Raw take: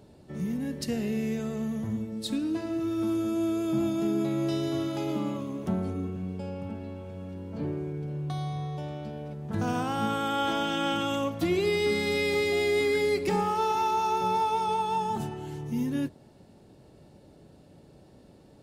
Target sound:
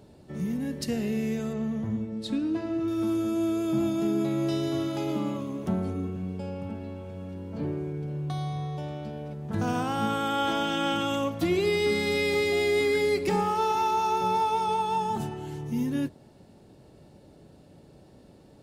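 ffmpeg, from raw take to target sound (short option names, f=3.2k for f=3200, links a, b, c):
-filter_complex "[0:a]asettb=1/sr,asplit=3[a][b][c];[a]atrim=end=1.534[d];[b]atrim=start=1.53:end=2.88,asetpts=PTS-STARTPTS,afade=t=in:d=0.004:c=qsin,afade=t=out:st=1.346:d=0.004:c=qsin,aemphasis=mode=reproduction:type=50fm[e];[c]atrim=start=2.876[f];[d][e]acrossfade=d=0.004:c1=hsin:c2=qsin[g];[g][f]acrossfade=d=0.004:c1=qsin:c2=hsin,volume=1dB"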